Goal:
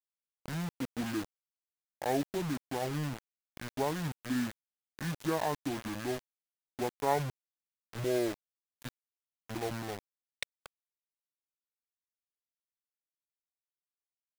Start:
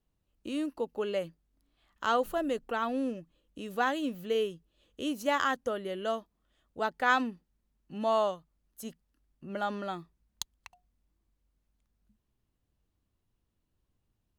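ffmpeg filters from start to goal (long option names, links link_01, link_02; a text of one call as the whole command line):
ffmpeg -i in.wav -af "asetrate=24750,aresample=44100,atempo=1.7818,acrusher=bits=5:mix=0:aa=0.000001,volume=-3.5dB" out.wav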